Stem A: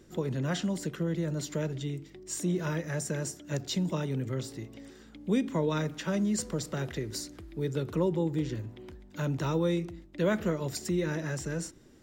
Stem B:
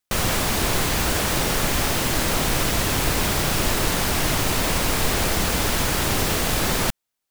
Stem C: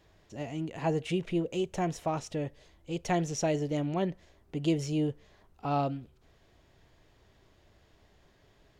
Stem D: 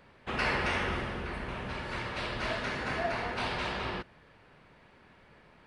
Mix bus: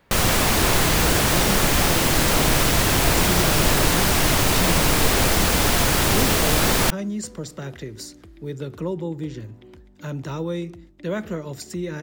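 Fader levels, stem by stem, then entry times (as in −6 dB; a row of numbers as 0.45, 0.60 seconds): +0.5, +3.0, −4.0, −1.5 decibels; 0.85, 0.00, 0.00, 0.00 seconds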